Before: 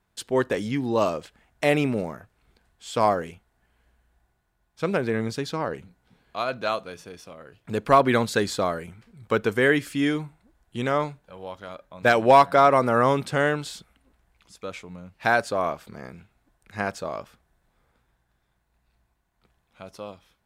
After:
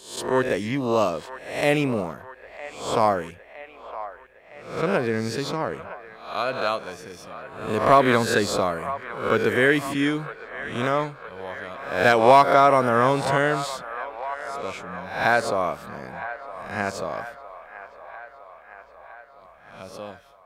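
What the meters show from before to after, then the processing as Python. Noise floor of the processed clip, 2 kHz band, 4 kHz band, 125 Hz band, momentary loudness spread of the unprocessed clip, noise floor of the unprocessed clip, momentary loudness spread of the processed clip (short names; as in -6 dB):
-49 dBFS, +2.5 dB, +2.5 dB, +0.5 dB, 22 LU, -72 dBFS, 22 LU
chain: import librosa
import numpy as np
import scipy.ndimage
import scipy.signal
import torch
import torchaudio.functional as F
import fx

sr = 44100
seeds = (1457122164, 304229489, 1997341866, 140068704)

y = fx.spec_swells(x, sr, rise_s=0.56)
y = fx.echo_wet_bandpass(y, sr, ms=961, feedback_pct=62, hz=1200.0, wet_db=-12.5)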